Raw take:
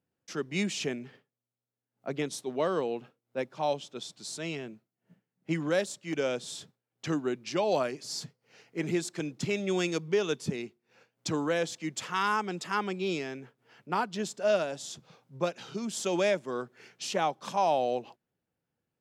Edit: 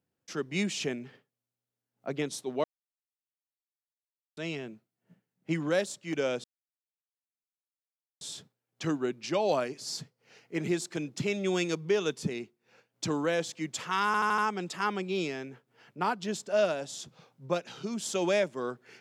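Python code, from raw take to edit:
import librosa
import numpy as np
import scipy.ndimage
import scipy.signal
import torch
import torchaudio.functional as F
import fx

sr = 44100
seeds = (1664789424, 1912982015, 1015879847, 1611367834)

y = fx.edit(x, sr, fx.silence(start_s=2.64, length_s=1.73),
    fx.insert_silence(at_s=6.44, length_s=1.77),
    fx.stutter(start_s=12.29, slice_s=0.08, count=5), tone=tone)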